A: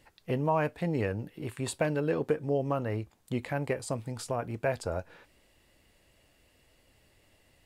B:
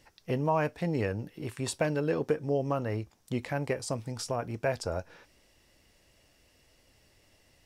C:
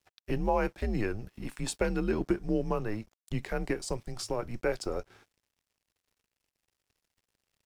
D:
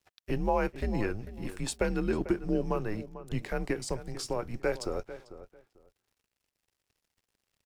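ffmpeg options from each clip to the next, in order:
-af "equalizer=f=5.6k:w=3.6:g=10"
-af "afreqshift=-110,aeval=exprs='sgn(val(0))*max(abs(val(0))-0.00119,0)':c=same"
-filter_complex "[0:a]asplit=2[a][b];[b]adelay=445,lowpass=f=2.1k:p=1,volume=-13.5dB,asplit=2[c][d];[d]adelay=445,lowpass=f=2.1k:p=1,volume=0.2[e];[a][c][e]amix=inputs=3:normalize=0"

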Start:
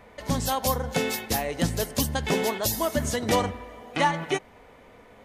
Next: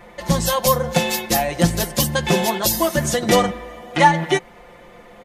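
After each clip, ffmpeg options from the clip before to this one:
-af "aecho=1:1:5.7:0.97,volume=5dB"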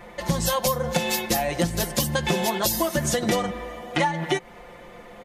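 -af "acompressor=threshold=-19dB:ratio=12"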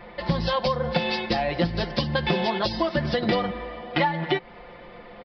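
-af "aresample=11025,aresample=44100"

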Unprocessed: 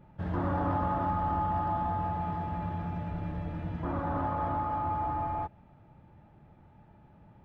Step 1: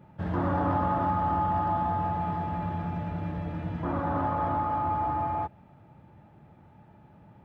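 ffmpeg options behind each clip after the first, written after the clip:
-af "highpass=78,volume=3.5dB"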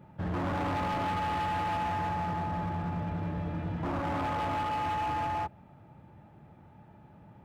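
-af "asoftclip=type=hard:threshold=-29dB"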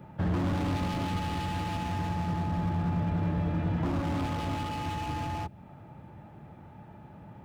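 -filter_complex "[0:a]acrossover=split=360|3000[a][b][c];[b]acompressor=threshold=-43dB:ratio=6[d];[a][d][c]amix=inputs=3:normalize=0,volume=5.5dB"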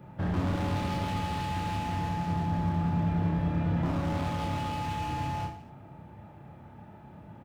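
-af "aecho=1:1:30|67.5|114.4|173|246.2:0.631|0.398|0.251|0.158|0.1,volume=-2dB"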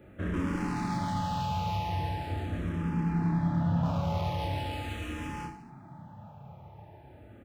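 -filter_complex "[0:a]asplit=2[a][b];[b]afreqshift=-0.41[c];[a][c]amix=inputs=2:normalize=1,volume=2dB"

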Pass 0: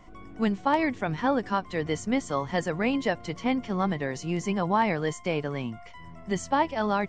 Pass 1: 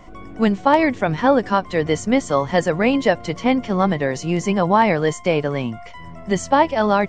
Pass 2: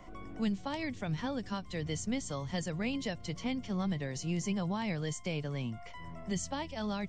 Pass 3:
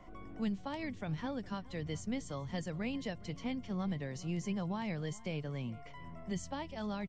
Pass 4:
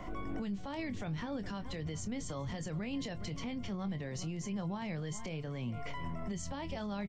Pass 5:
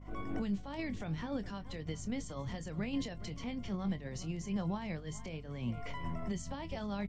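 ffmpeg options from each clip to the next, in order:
-af "equalizer=f=560:t=o:w=0.55:g=4,volume=8dB"
-filter_complex "[0:a]acrossover=split=190|3000[a][b][c];[b]acompressor=threshold=-38dB:ratio=2.5[d];[a][d][c]amix=inputs=3:normalize=0,volume=-8dB"
-filter_complex "[0:a]highshelf=f=4.3k:g=-8,asplit=2[a][b];[b]adelay=414,volume=-20dB,highshelf=f=4k:g=-9.32[c];[a][c]amix=inputs=2:normalize=0,volume=-3dB"
-filter_complex "[0:a]acompressor=threshold=-42dB:ratio=6,alimiter=level_in=19dB:limit=-24dB:level=0:latency=1:release=30,volume=-19dB,asplit=2[a][b];[b]adelay=25,volume=-12.5dB[c];[a][c]amix=inputs=2:normalize=0,volume=11dB"
-af "bandreject=f=50:t=h:w=6,bandreject=f=100:t=h:w=6,bandreject=f=150:t=h:w=6,agate=range=-33dB:threshold=-32dB:ratio=3:detection=peak,aeval=exprs='val(0)+0.00158*(sin(2*PI*50*n/s)+sin(2*PI*2*50*n/s)/2+sin(2*PI*3*50*n/s)/3+sin(2*PI*4*50*n/s)/4+sin(2*PI*5*50*n/s)/5)':c=same,volume=6.5dB"

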